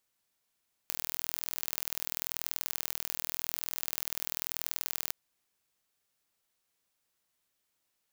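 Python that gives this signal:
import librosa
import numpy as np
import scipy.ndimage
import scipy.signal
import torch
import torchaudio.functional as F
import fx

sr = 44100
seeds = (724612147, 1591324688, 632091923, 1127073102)

y = fx.impulse_train(sr, length_s=4.21, per_s=40.9, accent_every=2, level_db=-5.0)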